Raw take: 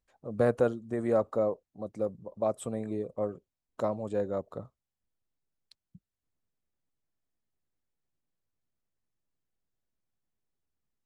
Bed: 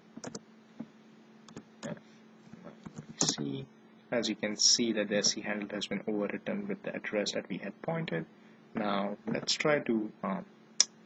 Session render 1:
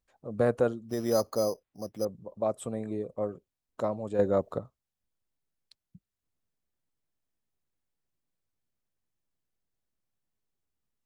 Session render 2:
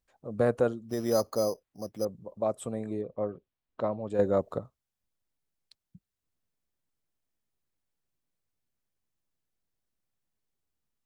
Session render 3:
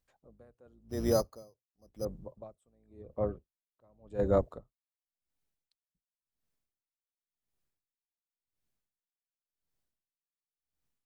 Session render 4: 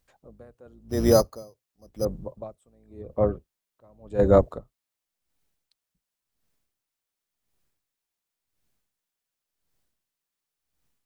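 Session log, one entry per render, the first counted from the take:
0:00.89–0:02.05: bad sample-rate conversion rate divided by 8×, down none, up hold; 0:04.19–0:04.59: clip gain +7 dB
0:03.01–0:04.10: low-pass filter 4,000 Hz 24 dB per octave
sub-octave generator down 2 octaves, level −2 dB; tremolo with a sine in dB 0.92 Hz, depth 37 dB
level +9.5 dB

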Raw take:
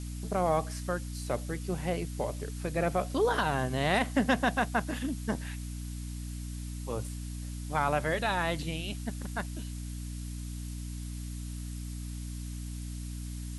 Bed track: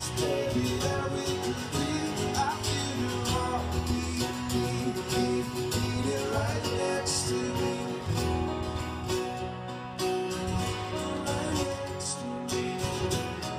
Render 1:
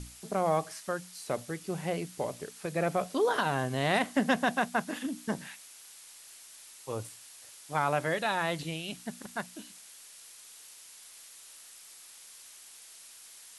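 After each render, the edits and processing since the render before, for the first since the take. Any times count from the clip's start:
mains-hum notches 60/120/180/240/300 Hz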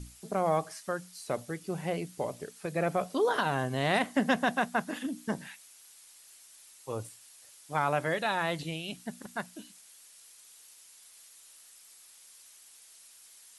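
broadband denoise 6 dB, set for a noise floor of −52 dBFS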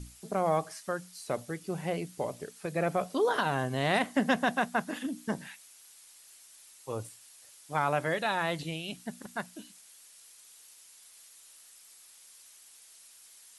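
no processing that can be heard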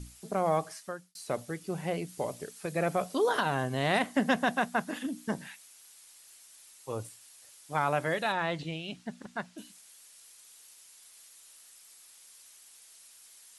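0:00.72–0:01.15: fade out
0:02.08–0:03.40: high-shelf EQ 4,100 Hz +4 dB
0:08.32–0:09.58: high-frequency loss of the air 83 metres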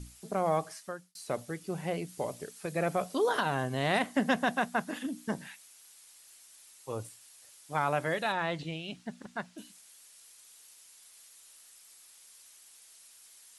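level −1 dB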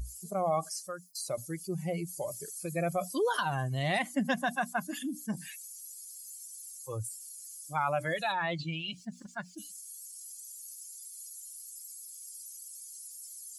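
spectral dynamics exaggerated over time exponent 2
envelope flattener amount 50%

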